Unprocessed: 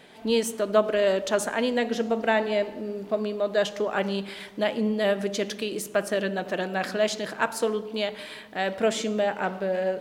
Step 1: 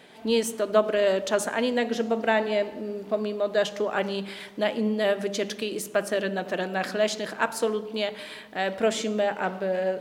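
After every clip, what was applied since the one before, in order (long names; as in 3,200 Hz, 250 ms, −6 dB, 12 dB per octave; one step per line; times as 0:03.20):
high-pass filter 45 Hz
mains-hum notches 50/100/150/200 Hz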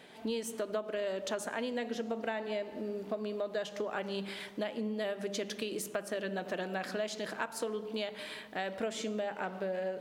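downward compressor 6 to 1, threshold −29 dBFS, peak gain reduction 14 dB
level −3.5 dB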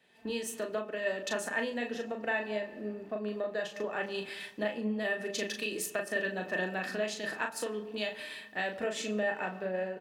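double-tracking delay 38 ms −5 dB
hollow resonant body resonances 1,800/2,600 Hz, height 18 dB, ringing for 85 ms
multiband upward and downward expander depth 70%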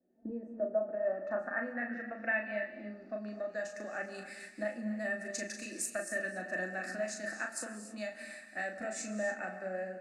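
low-pass filter sweep 400 Hz → 8,200 Hz, 0:00.13–0:03.77
phaser with its sweep stopped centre 650 Hz, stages 8
reverb whose tail is shaped and stops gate 310 ms rising, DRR 9.5 dB
level −2.5 dB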